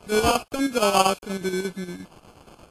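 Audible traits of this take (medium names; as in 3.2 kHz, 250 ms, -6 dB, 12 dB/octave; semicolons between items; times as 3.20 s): a quantiser's noise floor 8-bit, dither none; chopped level 8.5 Hz, depth 60%, duty 65%; aliases and images of a low sample rate 1.9 kHz, jitter 0%; Vorbis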